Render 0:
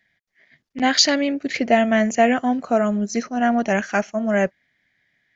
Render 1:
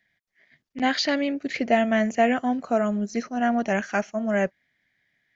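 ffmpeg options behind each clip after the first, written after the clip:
ffmpeg -i in.wav -filter_complex "[0:a]acrossover=split=4300[link_01][link_02];[link_02]acompressor=threshold=-39dB:ratio=4:attack=1:release=60[link_03];[link_01][link_03]amix=inputs=2:normalize=0,volume=-4dB" out.wav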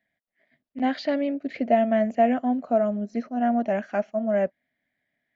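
ffmpeg -i in.wav -af "equalizer=frequency=250:width_type=o:width=0.67:gain=9,equalizer=frequency=630:width_type=o:width=0.67:gain=11,equalizer=frequency=6300:width_type=o:width=0.67:gain=-12,volume=-8.5dB" out.wav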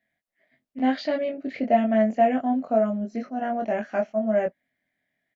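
ffmpeg -i in.wav -filter_complex "[0:a]asplit=2[link_01][link_02];[link_02]adelay=23,volume=-3dB[link_03];[link_01][link_03]amix=inputs=2:normalize=0,volume=-1.5dB" out.wav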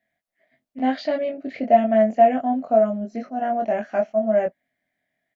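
ffmpeg -i in.wav -af "equalizer=frequency=680:width=3.4:gain=5.5" out.wav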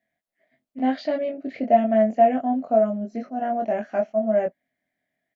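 ffmpeg -i in.wav -af "equalizer=frequency=300:width_type=o:width=2.2:gain=3.5,volume=-3.5dB" out.wav

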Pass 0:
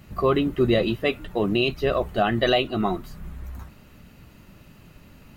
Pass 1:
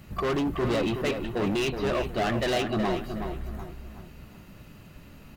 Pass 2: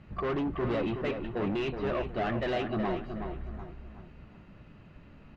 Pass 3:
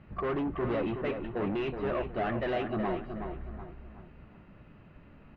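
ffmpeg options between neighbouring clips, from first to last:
ffmpeg -i in.wav -filter_complex "[0:a]acrossover=split=4600[link_01][link_02];[link_02]acompressor=threshold=-54dB:ratio=4:attack=1:release=60[link_03];[link_01][link_03]amix=inputs=2:normalize=0,asoftclip=type=hard:threshold=-24dB,asplit=2[link_04][link_05];[link_05]adelay=371,lowpass=frequency=2900:poles=1,volume=-7dB,asplit=2[link_06][link_07];[link_07]adelay=371,lowpass=frequency=2900:poles=1,volume=0.37,asplit=2[link_08][link_09];[link_09]adelay=371,lowpass=frequency=2900:poles=1,volume=0.37,asplit=2[link_10][link_11];[link_11]adelay=371,lowpass=frequency=2900:poles=1,volume=0.37[link_12];[link_06][link_08][link_10][link_12]amix=inputs=4:normalize=0[link_13];[link_04][link_13]amix=inputs=2:normalize=0" out.wav
ffmpeg -i in.wav -af "lowpass=2600,volume=-4dB" out.wav
ffmpeg -i in.wav -af "bass=frequency=250:gain=-2,treble=frequency=4000:gain=-14" out.wav

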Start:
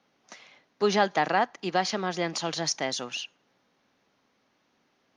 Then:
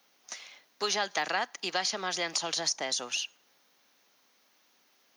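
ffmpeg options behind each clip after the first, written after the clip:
ffmpeg -i in.wav -filter_complex "[0:a]aemphasis=mode=production:type=riaa,acrossover=split=480|1200[link_01][link_02][link_03];[link_01]acompressor=threshold=-41dB:ratio=4[link_04];[link_02]acompressor=threshold=-35dB:ratio=4[link_05];[link_03]acompressor=threshold=-29dB:ratio=4[link_06];[link_04][link_05][link_06]amix=inputs=3:normalize=0" out.wav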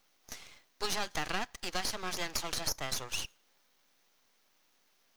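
ffmpeg -i in.wav -af "aeval=exprs='max(val(0),0)':channel_layout=same" out.wav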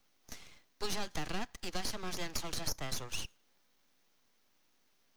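ffmpeg -i in.wav -filter_complex "[0:a]acrossover=split=340|900|2600[link_01][link_02][link_03][link_04];[link_01]acontrast=62[link_05];[link_03]alimiter=level_in=11dB:limit=-24dB:level=0:latency=1,volume=-11dB[link_06];[link_05][link_02][link_06][link_04]amix=inputs=4:normalize=0,volume=-4dB" out.wav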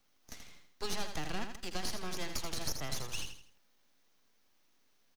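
ffmpeg -i in.wav -af "aecho=1:1:81|162|243|324:0.422|0.152|0.0547|0.0197,volume=-1dB" out.wav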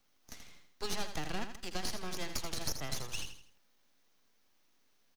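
ffmpeg -i in.wav -af "aeval=exprs='0.0841*(cos(1*acos(clip(val(0)/0.0841,-1,1)))-cos(1*PI/2))+0.00944*(cos(4*acos(clip(val(0)/0.0841,-1,1)))-cos(4*PI/2))+0.00376*(cos(7*acos(clip(val(0)/0.0841,-1,1)))-cos(7*PI/2))':channel_layout=same,volume=3dB" out.wav

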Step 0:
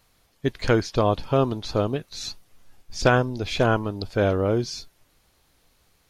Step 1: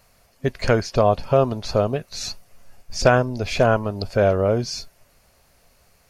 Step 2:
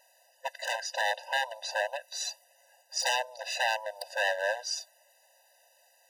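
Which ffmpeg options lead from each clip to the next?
ffmpeg -i in.wav -filter_complex "[0:a]superequalizer=6b=0.501:8b=1.78:13b=0.501,asplit=2[link_01][link_02];[link_02]acompressor=threshold=-28dB:ratio=6,volume=-1.5dB[link_03];[link_01][link_03]amix=inputs=2:normalize=0" out.wav
ffmpeg -i in.wav -af "aeval=exprs='0.141*(abs(mod(val(0)/0.141+3,4)-2)-1)':channel_layout=same,highpass=frequency=660:poles=1,afftfilt=real='re*eq(mod(floor(b*sr/1024/510),2),1)':imag='im*eq(mod(floor(b*sr/1024/510),2),1)':win_size=1024:overlap=0.75" out.wav

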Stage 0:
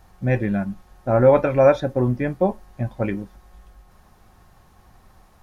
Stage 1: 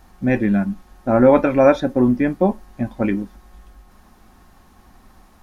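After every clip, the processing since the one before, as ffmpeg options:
ffmpeg -i in.wav -af "equalizer=frequency=125:width_type=o:width=1:gain=-9,equalizer=frequency=250:width_type=o:width=1:gain=8,equalizer=frequency=500:width_type=o:width=1:gain=-4,volume=3.5dB" out.wav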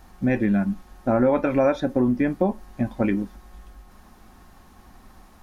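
ffmpeg -i in.wav -af "acompressor=threshold=-18dB:ratio=3" out.wav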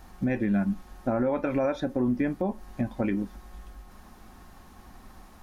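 ffmpeg -i in.wav -af "alimiter=limit=-17.5dB:level=0:latency=1:release=273" out.wav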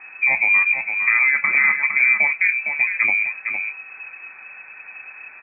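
ffmpeg -i in.wav -af "lowpass=frequency=2200:width_type=q:width=0.5098,lowpass=frequency=2200:width_type=q:width=0.6013,lowpass=frequency=2200:width_type=q:width=0.9,lowpass=frequency=2200:width_type=q:width=2.563,afreqshift=-2600,aecho=1:1:459:0.447,volume=8.5dB" out.wav

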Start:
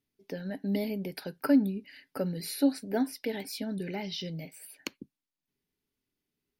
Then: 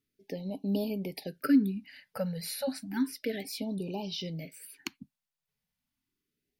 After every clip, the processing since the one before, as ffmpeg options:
ffmpeg -i in.wav -af "afftfilt=real='re*(1-between(b*sr/1024,300*pow(1700/300,0.5+0.5*sin(2*PI*0.32*pts/sr))/1.41,300*pow(1700/300,0.5+0.5*sin(2*PI*0.32*pts/sr))*1.41))':imag='im*(1-between(b*sr/1024,300*pow(1700/300,0.5+0.5*sin(2*PI*0.32*pts/sr))/1.41,300*pow(1700/300,0.5+0.5*sin(2*PI*0.32*pts/sr))*1.41))':win_size=1024:overlap=0.75" out.wav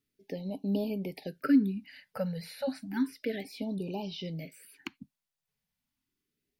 ffmpeg -i in.wav -filter_complex "[0:a]acrossover=split=3400[link_01][link_02];[link_02]acompressor=threshold=-52dB:ratio=4:attack=1:release=60[link_03];[link_01][link_03]amix=inputs=2:normalize=0" out.wav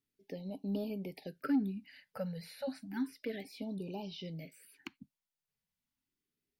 ffmpeg -i in.wav -af "asoftclip=type=tanh:threshold=-17.5dB,volume=-5.5dB" out.wav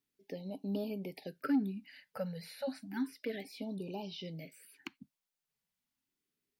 ffmpeg -i in.wav -af "lowshelf=frequency=110:gain=-9,volume=1.5dB" out.wav

